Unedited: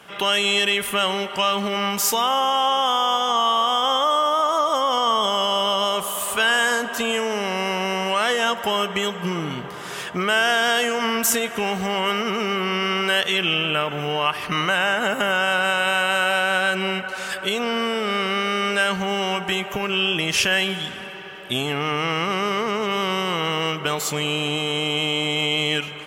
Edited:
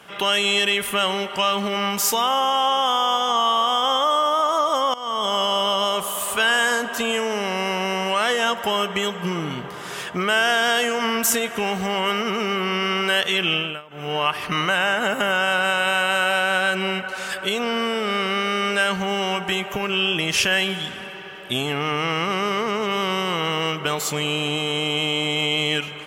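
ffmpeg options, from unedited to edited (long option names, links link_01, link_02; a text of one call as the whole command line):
ffmpeg -i in.wav -filter_complex "[0:a]asplit=4[link_01][link_02][link_03][link_04];[link_01]atrim=end=4.94,asetpts=PTS-STARTPTS,afade=type=out:start_time=4.936:duration=0.004:curve=hsin:silence=0.11885[link_05];[link_02]atrim=start=4.94:end=13.82,asetpts=PTS-STARTPTS,afade=type=in:duration=0.4:silence=0.11885,afade=type=out:start_time=8.61:duration=0.27:silence=0.0944061[link_06];[link_03]atrim=start=13.82:end=13.89,asetpts=PTS-STARTPTS,volume=-20.5dB[link_07];[link_04]atrim=start=13.89,asetpts=PTS-STARTPTS,afade=type=in:duration=0.27:silence=0.0944061[link_08];[link_05][link_06][link_07][link_08]concat=n=4:v=0:a=1" out.wav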